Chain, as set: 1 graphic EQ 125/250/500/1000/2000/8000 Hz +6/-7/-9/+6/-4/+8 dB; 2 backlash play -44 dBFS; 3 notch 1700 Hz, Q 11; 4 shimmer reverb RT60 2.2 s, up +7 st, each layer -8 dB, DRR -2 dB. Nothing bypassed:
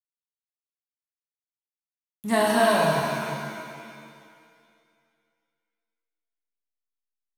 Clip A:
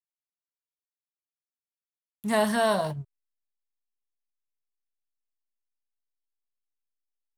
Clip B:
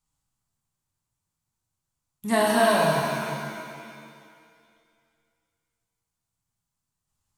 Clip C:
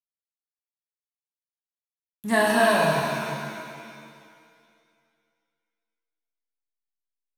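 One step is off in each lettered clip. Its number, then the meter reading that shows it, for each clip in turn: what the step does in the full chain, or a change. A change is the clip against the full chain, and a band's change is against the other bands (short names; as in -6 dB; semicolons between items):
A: 4, momentary loudness spread change -5 LU; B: 2, distortion -26 dB; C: 3, 2 kHz band +3.5 dB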